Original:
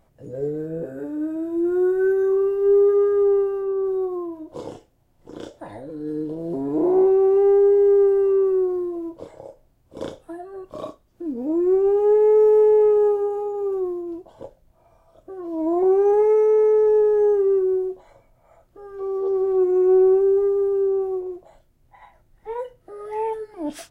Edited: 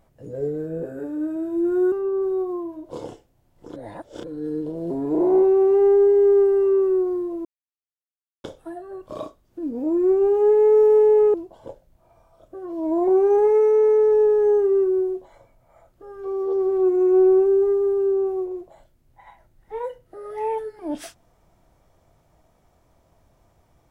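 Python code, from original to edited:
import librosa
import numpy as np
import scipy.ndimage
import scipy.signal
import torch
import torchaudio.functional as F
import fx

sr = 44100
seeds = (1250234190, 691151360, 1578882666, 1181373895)

y = fx.edit(x, sr, fx.cut(start_s=1.92, length_s=1.63),
    fx.reverse_span(start_s=5.39, length_s=0.48),
    fx.silence(start_s=9.08, length_s=0.99),
    fx.cut(start_s=12.97, length_s=1.12), tone=tone)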